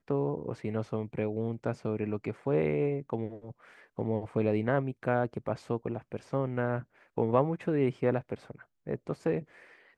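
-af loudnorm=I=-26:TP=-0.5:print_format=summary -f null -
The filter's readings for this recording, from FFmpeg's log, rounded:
Input Integrated:    -31.8 LUFS
Input True Peak:     -10.8 dBTP
Input LRA:             1.3 LU
Input Threshold:     -42.4 LUFS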